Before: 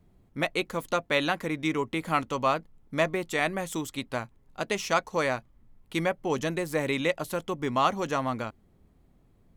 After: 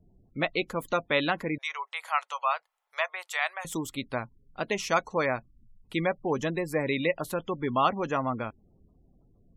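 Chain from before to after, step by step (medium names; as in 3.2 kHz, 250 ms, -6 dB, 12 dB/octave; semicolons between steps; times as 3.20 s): 1.58–3.65 s: inverse Chebyshev high-pass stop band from 290 Hz, stop band 50 dB; spectral gate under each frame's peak -25 dB strong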